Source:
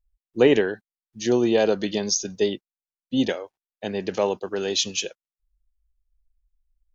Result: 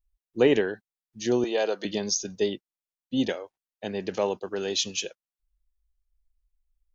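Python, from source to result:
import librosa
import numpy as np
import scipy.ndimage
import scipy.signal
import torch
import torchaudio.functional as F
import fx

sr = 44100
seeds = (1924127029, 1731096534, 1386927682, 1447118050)

y = fx.highpass(x, sr, hz=460.0, slope=12, at=(1.44, 1.85))
y = F.gain(torch.from_numpy(y), -3.5).numpy()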